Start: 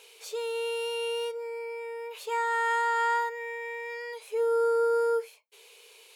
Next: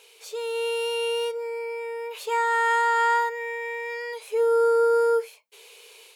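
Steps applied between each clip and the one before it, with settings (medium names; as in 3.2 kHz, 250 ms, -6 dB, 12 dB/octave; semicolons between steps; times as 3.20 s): level rider gain up to 5 dB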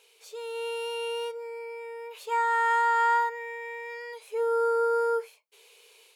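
dynamic bell 1.1 kHz, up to +7 dB, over -36 dBFS, Q 0.93; trim -7.5 dB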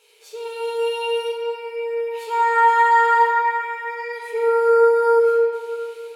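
reverberation RT60 3.1 s, pre-delay 7 ms, DRR -5.5 dB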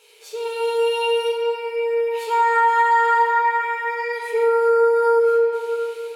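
compression 2.5:1, threshold -20 dBFS, peak gain reduction 7 dB; trim +4 dB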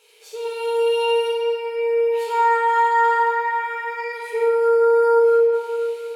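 flutter echo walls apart 9.6 m, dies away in 0.52 s; trim -3 dB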